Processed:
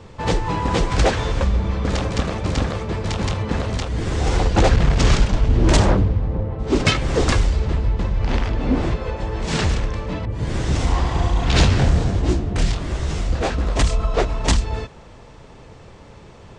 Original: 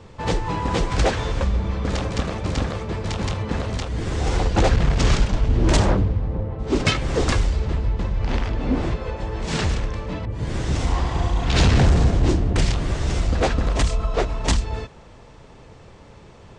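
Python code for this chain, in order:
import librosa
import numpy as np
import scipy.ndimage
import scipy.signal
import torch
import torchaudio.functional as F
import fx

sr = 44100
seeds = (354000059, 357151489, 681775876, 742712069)

y = fx.detune_double(x, sr, cents=fx.line((11.64, 42.0), (13.75, 58.0)), at=(11.64, 13.75), fade=0.02)
y = y * librosa.db_to_amplitude(2.5)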